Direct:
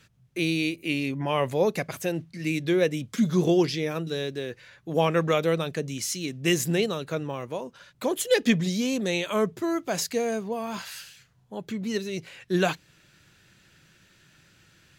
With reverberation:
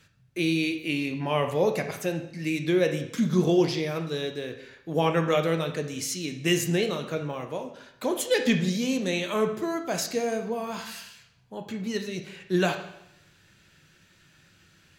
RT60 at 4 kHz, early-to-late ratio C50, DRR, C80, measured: 0.75 s, 8.5 dB, 5.0 dB, 11.5 dB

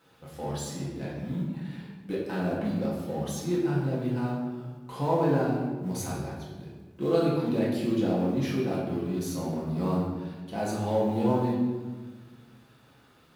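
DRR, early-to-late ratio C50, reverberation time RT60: −7.0 dB, 1.5 dB, 1.4 s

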